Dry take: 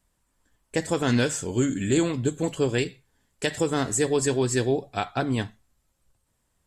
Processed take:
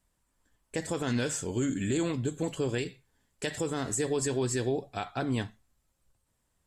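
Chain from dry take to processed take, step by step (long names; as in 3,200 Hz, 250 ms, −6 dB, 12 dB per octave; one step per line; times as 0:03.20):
brickwall limiter −17 dBFS, peak gain reduction 5.5 dB
level −3.5 dB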